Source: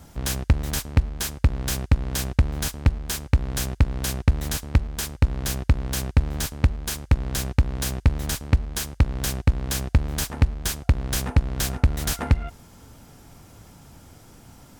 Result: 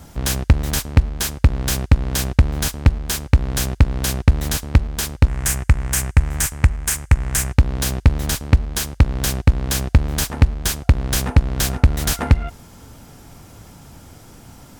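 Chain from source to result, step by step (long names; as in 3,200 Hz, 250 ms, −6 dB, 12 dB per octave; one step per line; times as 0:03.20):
0:05.28–0:07.54: octave-band graphic EQ 250/500/2,000/4,000/8,000 Hz −6/−5/+6/−9/+9 dB
level +5.5 dB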